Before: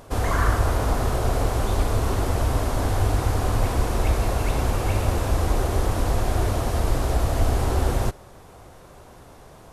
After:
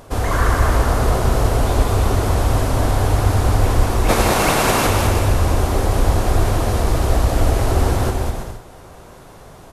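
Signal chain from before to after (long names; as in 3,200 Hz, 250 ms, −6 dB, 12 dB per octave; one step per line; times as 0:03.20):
0:04.08–0:04.86: ceiling on every frequency bin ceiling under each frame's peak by 22 dB
bouncing-ball delay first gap 200 ms, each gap 0.65×, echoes 5
level +3.5 dB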